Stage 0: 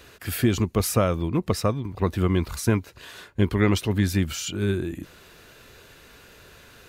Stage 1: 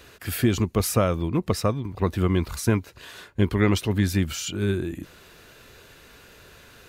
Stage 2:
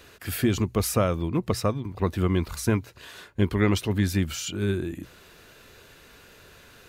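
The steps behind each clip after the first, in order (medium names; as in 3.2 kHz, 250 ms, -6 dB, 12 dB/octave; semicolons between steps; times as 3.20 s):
no audible change
hum notches 60/120 Hz; trim -1.5 dB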